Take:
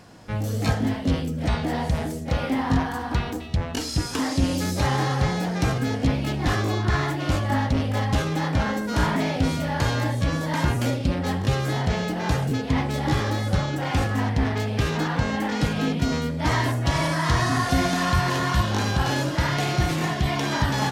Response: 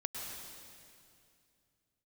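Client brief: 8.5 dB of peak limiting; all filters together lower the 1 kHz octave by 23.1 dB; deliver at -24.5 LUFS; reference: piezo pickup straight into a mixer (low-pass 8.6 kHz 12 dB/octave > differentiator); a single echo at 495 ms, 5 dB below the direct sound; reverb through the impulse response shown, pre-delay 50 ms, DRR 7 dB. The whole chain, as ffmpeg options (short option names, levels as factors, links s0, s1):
-filter_complex "[0:a]equalizer=f=1000:t=o:g=-7.5,alimiter=limit=0.119:level=0:latency=1,aecho=1:1:495:0.562,asplit=2[s0][s1];[1:a]atrim=start_sample=2205,adelay=50[s2];[s1][s2]afir=irnorm=-1:irlink=0,volume=0.398[s3];[s0][s3]amix=inputs=2:normalize=0,lowpass=8600,aderivative,volume=5.62"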